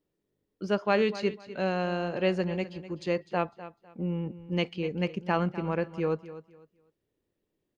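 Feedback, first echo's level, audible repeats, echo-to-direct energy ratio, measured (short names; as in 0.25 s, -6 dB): 25%, -15.0 dB, 2, -14.5 dB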